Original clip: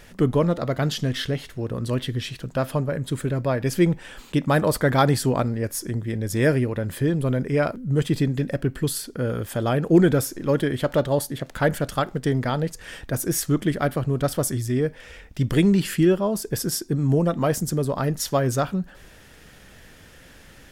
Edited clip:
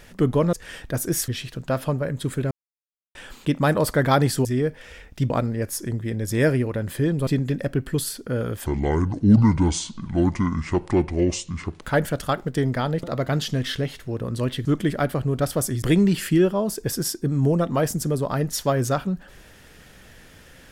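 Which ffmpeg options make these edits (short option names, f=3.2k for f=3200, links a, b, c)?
-filter_complex "[0:a]asplit=13[a][b][c][d][e][f][g][h][i][j][k][l][m];[a]atrim=end=0.532[n];[b]atrim=start=12.718:end=13.472[o];[c]atrim=start=2.148:end=3.38,asetpts=PTS-STARTPTS,afade=t=out:st=1.228:d=0.004:c=hsin[p];[d]atrim=start=3.38:end=4.02,asetpts=PTS-STARTPTS,volume=0[q];[e]atrim=start=4.02:end=5.322,asetpts=PTS-STARTPTS,afade=t=in:d=0.004:c=hsin[r];[f]atrim=start=14.638:end=15.492[s];[g]atrim=start=5.318:end=7.292[t];[h]atrim=start=8.158:end=9.554[u];[i]atrim=start=9.55:end=11.51,asetpts=PTS-STARTPTS,asetrate=27342,aresample=44100[v];[j]atrim=start=11.506:end=12.722[w];[k]atrim=start=0.528:end=2.152[x];[l]atrim=start=13.468:end=14.642[y];[m]atrim=start=15.488[z];[n][o]acrossfade=d=0.004:c1=hsin:c2=hsin[aa];[p][q][r]concat=n=3:v=0:a=1[ab];[aa][ab]acrossfade=d=0.004:c1=hsin:c2=hsin[ac];[ac][s]acrossfade=d=0.004:c1=hsin:c2=hsin[ad];[ad][t]acrossfade=d=0.004:c1=hsin:c2=hsin[ae];[ae][u]acrossfade=d=0.004:c1=hsin:c2=hsin[af];[af][v]acrossfade=d=0.004:c1=hsin:c2=hsin[ag];[ag][w]acrossfade=d=0.004:c1=hsin:c2=hsin[ah];[ah][x]acrossfade=d=0.004:c1=hsin:c2=hsin[ai];[ai][y]acrossfade=d=0.004:c1=hsin:c2=hsin[aj];[aj][z]acrossfade=d=0.004:c1=hsin:c2=hsin"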